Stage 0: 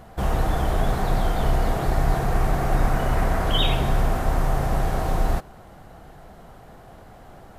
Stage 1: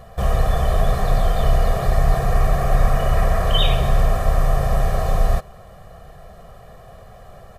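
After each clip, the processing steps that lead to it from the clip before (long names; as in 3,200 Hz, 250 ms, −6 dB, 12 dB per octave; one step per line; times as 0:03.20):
comb filter 1.7 ms, depth 84%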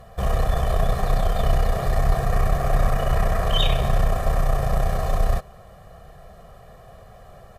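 harmonic generator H 4 −20 dB, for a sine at −3.5 dBFS
level −3 dB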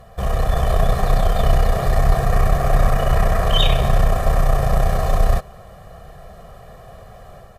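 automatic gain control gain up to 4 dB
level +1 dB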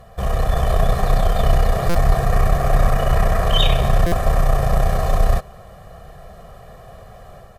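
buffer that repeats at 0:01.89/0:04.06, samples 256, times 9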